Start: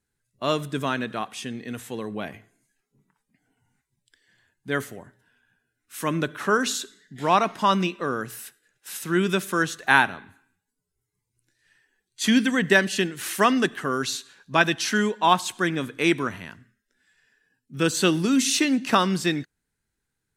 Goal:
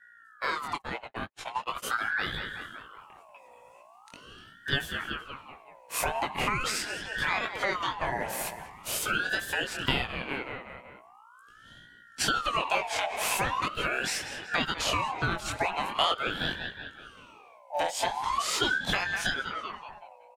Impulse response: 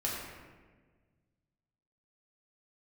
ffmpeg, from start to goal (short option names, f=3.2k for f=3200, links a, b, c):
-filter_complex "[0:a]asplit=2[a][b];[b]adelay=189,lowpass=f=3.8k:p=1,volume=-15dB,asplit=2[c][d];[d]adelay=189,lowpass=f=3.8k:p=1,volume=0.53,asplit=2[e][f];[f]adelay=189,lowpass=f=3.8k:p=1,volume=0.53,asplit=2[g][h];[h]adelay=189,lowpass=f=3.8k:p=1,volume=0.53,asplit=2[i][j];[j]adelay=189,lowpass=f=3.8k:p=1,volume=0.53[k];[a][c][e][g][i][k]amix=inputs=6:normalize=0,flanger=delay=16.5:depth=7.5:speed=2.1,dynaudnorm=f=160:g=21:m=11.5dB,aeval=exprs='val(0)+0.00158*(sin(2*PI*60*n/s)+sin(2*PI*2*60*n/s)/2+sin(2*PI*3*60*n/s)/3+sin(2*PI*4*60*n/s)/4+sin(2*PI*5*60*n/s)/5)':c=same,acompressor=threshold=-29dB:ratio=10,equalizer=f=2.1k:t=o:w=0.24:g=14,afreqshift=-290,asplit=3[l][m][n];[l]afade=t=out:st=0.76:d=0.02[o];[m]agate=range=-59dB:threshold=-31dB:ratio=16:detection=peak,afade=t=in:st=0.76:d=0.02,afade=t=out:st=1.82:d=0.02[p];[n]afade=t=in:st=1.82:d=0.02[q];[o][p][q]amix=inputs=3:normalize=0,aeval=exprs='val(0)*sin(2*PI*1200*n/s+1200*0.4/0.42*sin(2*PI*0.42*n/s))':c=same,volume=5dB"